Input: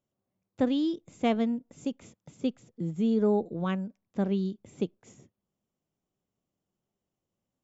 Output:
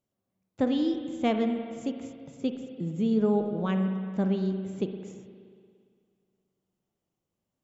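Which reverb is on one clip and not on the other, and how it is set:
spring reverb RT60 2.1 s, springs 37/58 ms, chirp 50 ms, DRR 5.5 dB

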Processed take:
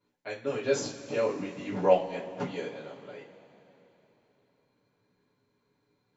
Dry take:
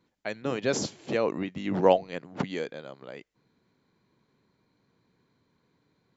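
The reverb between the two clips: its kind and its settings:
coupled-rooms reverb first 0.25 s, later 3.6 s, from −22 dB, DRR −10 dB
level −13 dB

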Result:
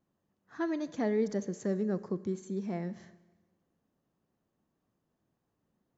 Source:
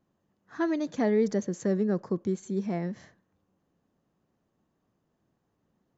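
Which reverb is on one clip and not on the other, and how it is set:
four-comb reverb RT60 1.3 s, combs from 29 ms, DRR 16 dB
level −5 dB

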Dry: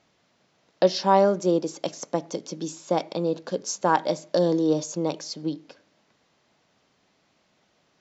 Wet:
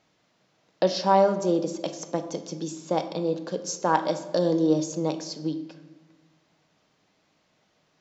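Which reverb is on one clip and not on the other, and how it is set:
rectangular room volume 560 cubic metres, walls mixed, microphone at 0.52 metres
level −2 dB

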